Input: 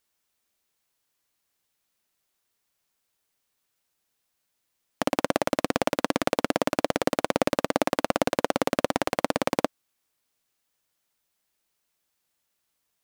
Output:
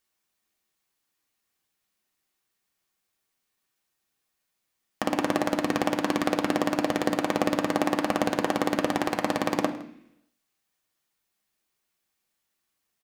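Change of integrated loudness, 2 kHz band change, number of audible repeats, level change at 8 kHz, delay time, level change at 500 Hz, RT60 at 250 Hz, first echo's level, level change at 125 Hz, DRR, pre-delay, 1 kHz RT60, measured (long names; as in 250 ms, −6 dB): 0.0 dB, 0.0 dB, 1, −2.0 dB, 162 ms, −2.0 dB, 0.90 s, −20.5 dB, +0.5 dB, 2.0 dB, 3 ms, 0.65 s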